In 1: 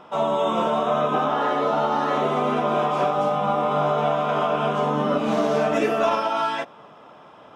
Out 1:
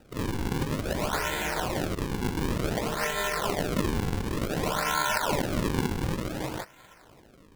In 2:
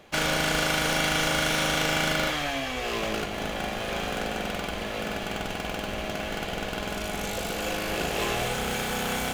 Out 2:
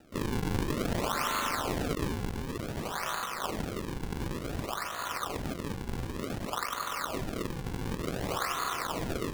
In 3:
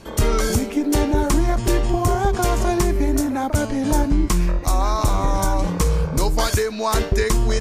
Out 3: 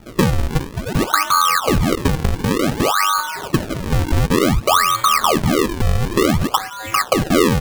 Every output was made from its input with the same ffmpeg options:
ffmpeg -i in.wav -af "bass=frequency=250:gain=12,treble=frequency=4000:gain=-5,aeval=exprs='val(0)*sin(2*PI*1200*n/s)':channel_layout=same,acrusher=samples=40:mix=1:aa=0.000001:lfo=1:lforange=64:lforate=0.55,volume=-6dB" out.wav

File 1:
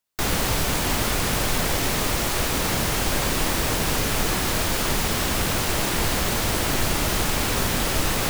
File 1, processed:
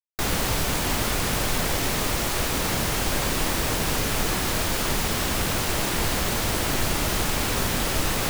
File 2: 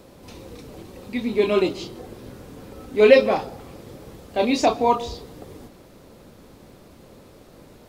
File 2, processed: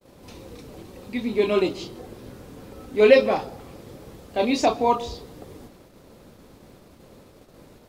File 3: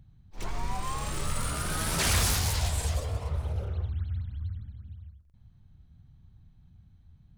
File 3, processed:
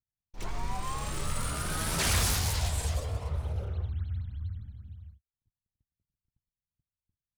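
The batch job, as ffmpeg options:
ffmpeg -i in.wav -af "agate=range=-42dB:threshold=-48dB:ratio=16:detection=peak,volume=-1.5dB" out.wav

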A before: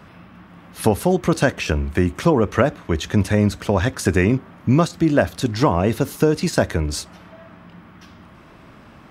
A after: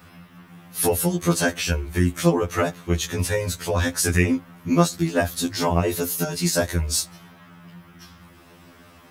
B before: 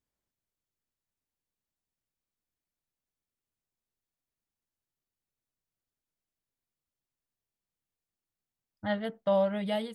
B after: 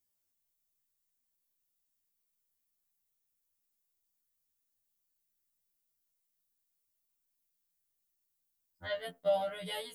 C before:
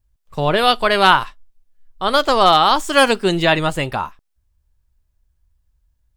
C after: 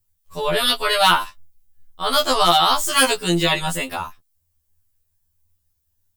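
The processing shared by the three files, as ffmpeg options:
ffmpeg -i in.wav -af "aemphasis=mode=production:type=75kf,afftfilt=real='re*2*eq(mod(b,4),0)':imag='im*2*eq(mod(b,4),0)':win_size=2048:overlap=0.75,volume=-2.5dB" out.wav

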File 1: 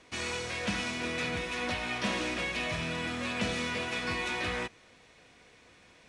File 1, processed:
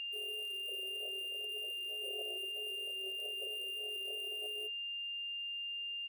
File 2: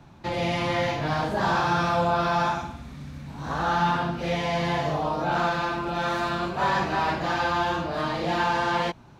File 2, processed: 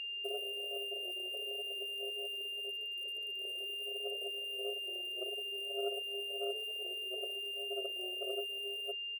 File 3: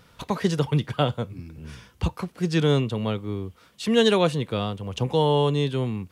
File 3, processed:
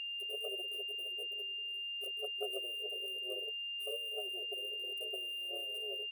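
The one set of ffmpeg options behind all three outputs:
ffmpeg -i in.wav -filter_complex "[0:a]asplit=2[link_01][link_02];[link_02]aeval=exprs='(mod(8.41*val(0)+1,2)-1)/8.41':channel_layout=same,volume=-8dB[link_03];[link_01][link_03]amix=inputs=2:normalize=0,acrusher=bits=6:dc=4:mix=0:aa=0.000001,acrossover=split=200[link_04][link_05];[link_04]adelay=30[link_06];[link_06][link_05]amix=inputs=2:normalize=0,acompressor=threshold=-25dB:ratio=12,afftfilt=real='re*(1-between(b*sr/4096,380,8300))':imag='im*(1-between(b*sr/4096,380,8300))':win_size=4096:overlap=0.75,bass=frequency=250:gain=-14,treble=frequency=4000:gain=-13,aeval=exprs='val(0)*sin(2*PI*58*n/s)':channel_layout=same,flanger=delay=5.4:depth=2.4:regen=15:speed=1.6:shape=triangular,equalizer=frequency=860:width_type=o:width=1.3:gain=-5.5,aeval=exprs='0.0316*(cos(1*acos(clip(val(0)/0.0316,-1,1)))-cos(1*PI/2))+0.01*(cos(4*acos(clip(val(0)/0.0316,-1,1)))-cos(4*PI/2))':channel_layout=same,aeval=exprs='val(0)+0.00447*sin(2*PI*2800*n/s)':channel_layout=same,afftfilt=real='re*eq(mod(floor(b*sr/1024/370),2),1)':imag='im*eq(mod(floor(b*sr/1024/370),2),1)':win_size=1024:overlap=0.75,volume=8.5dB" out.wav

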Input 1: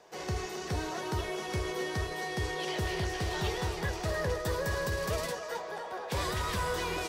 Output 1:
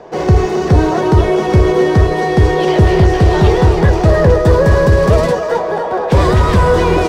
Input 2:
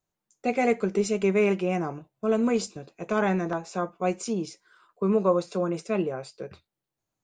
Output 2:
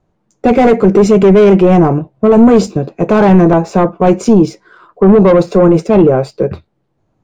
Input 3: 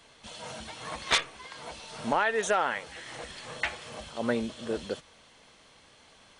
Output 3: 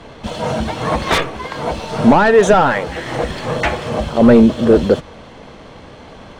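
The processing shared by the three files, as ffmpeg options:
ffmpeg -i in.wav -af "asoftclip=type=tanh:threshold=-22dB,apsyclip=27.5dB,adynamicsmooth=sensitivity=2.5:basefreq=5500,tiltshelf=frequency=1200:gain=8,volume=-9dB" out.wav

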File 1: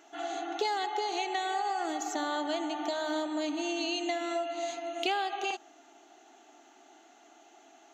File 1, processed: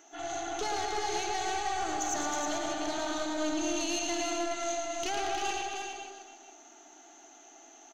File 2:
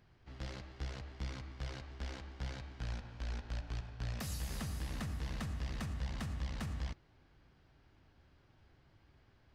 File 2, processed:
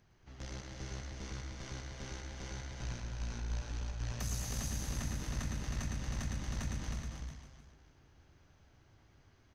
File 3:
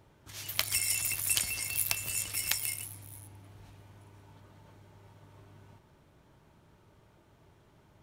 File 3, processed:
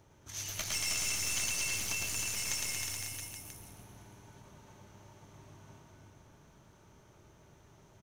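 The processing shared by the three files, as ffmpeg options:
ffmpeg -i in.wav -filter_complex "[0:a]asplit=2[link_01][link_02];[link_02]aecho=0:1:110|231|364.1|510.5|671.6:0.631|0.398|0.251|0.158|0.1[link_03];[link_01][link_03]amix=inputs=2:normalize=0,aeval=exprs='(tanh(28.2*val(0)+0.45)-tanh(0.45))/28.2':channel_layout=same,asplit=2[link_04][link_05];[link_05]aecho=0:1:315:0.562[link_06];[link_04][link_06]amix=inputs=2:normalize=0,acrossover=split=7500[link_07][link_08];[link_08]acompressor=threshold=-43dB:ratio=4:attack=1:release=60[link_09];[link_07][link_09]amix=inputs=2:normalize=0,equalizer=frequency=6200:width=5.7:gain=14" out.wav

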